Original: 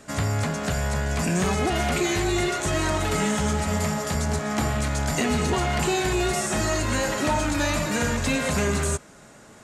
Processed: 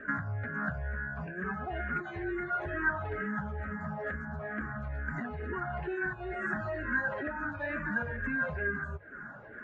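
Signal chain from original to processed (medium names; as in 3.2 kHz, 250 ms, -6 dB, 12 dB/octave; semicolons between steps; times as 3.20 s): spectral contrast enhancement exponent 1.5; hum notches 50/100 Hz; compression 6:1, threshold -33 dBFS, peak gain reduction 12.5 dB; resonant low-pass 1.6 kHz, resonance Q 11; barber-pole phaser -2.2 Hz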